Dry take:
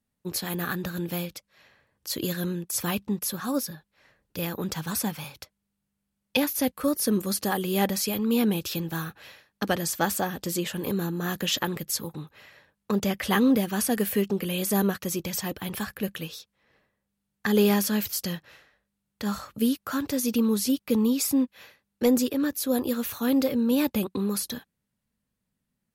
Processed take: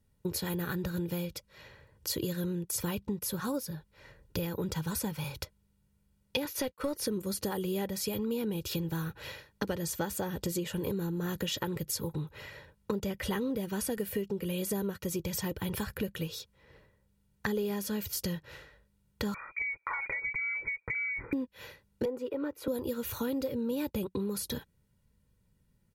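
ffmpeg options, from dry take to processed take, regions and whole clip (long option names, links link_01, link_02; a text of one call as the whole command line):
ffmpeg -i in.wav -filter_complex "[0:a]asettb=1/sr,asplit=3[link_01][link_02][link_03];[link_01]atrim=end=6.454[link_04];[link_02]atrim=start=6.45:end=7.07,asetpts=PTS-STARTPTS,afade=type=in:duration=0.004:curve=qsin,afade=type=out:start_time=0.616:duration=0.004:curve=qsin,agate=range=-33dB:threshold=-35dB:ratio=3:release=100:detection=peak,highshelf=frequency=7000:gain=-6,asplit=2[link_05][link_06];[link_06]highpass=frequency=720:poles=1,volume=12dB,asoftclip=type=tanh:threshold=-14dB[link_07];[link_05][link_07]amix=inputs=2:normalize=0,lowpass=frequency=6300:poles=1,volume=-6dB[link_08];[link_03]atrim=start=7.066[link_09];[link_04][link_08]acrossfade=duration=0.004:curve1=hsin:curve2=qsin[link_10];[link_10][link_09]acrossfade=duration=0.004:curve1=qsin:curve2=hsin,asettb=1/sr,asplit=3[link_11][link_12][link_13];[link_11]atrim=end=19.344[link_14];[link_12]atrim=start=19.34:end=21.33,asetpts=PTS-STARTPTS,afade=type=in:duration=0.004:curve=qsin,afade=type=out:start_time=1.986:duration=0.004:curve=qsin,lowpass=frequency=2100:width_type=q:width=0.5098,lowpass=frequency=2100:width_type=q:width=0.6013,lowpass=frequency=2100:width_type=q:width=0.9,lowpass=frequency=2100:width_type=q:width=2.563,afreqshift=-2500,acompressor=threshold=-29dB:ratio=6:attack=3.2:release=140:knee=1:detection=peak[link_15];[link_13]atrim=start=21.326[link_16];[link_14][link_15]acrossfade=duration=0.004:curve1=hsin:curve2=qsin[link_17];[link_17][link_16]acrossfade=duration=0.004:curve1=qsin:curve2=hsin,asettb=1/sr,asplit=3[link_18][link_19][link_20];[link_18]atrim=end=22.054[link_21];[link_19]atrim=start=22.05:end=22.68,asetpts=PTS-STARTPTS,afade=type=in:duration=0.004:curve=qsin,afade=type=out:start_time=0.626:duration=0.004:curve=qsin,acrossover=split=330 2300:gain=0.141 1 0.0794[link_22][link_23][link_24];[link_22][link_23][link_24]amix=inputs=3:normalize=0,bandreject=frequency=1700:width=5.7[link_25];[link_20]atrim=start=22.676[link_26];[link_21][link_25]acrossfade=duration=0.004:curve1=hsin:curve2=qsin[link_27];[link_27][link_26]acrossfade=duration=0.004:curve1=qsin:curve2=hsin,lowshelf=frequency=340:gain=11,aecho=1:1:2.1:0.52,acompressor=threshold=-34dB:ratio=6,volume=2.5dB" out.wav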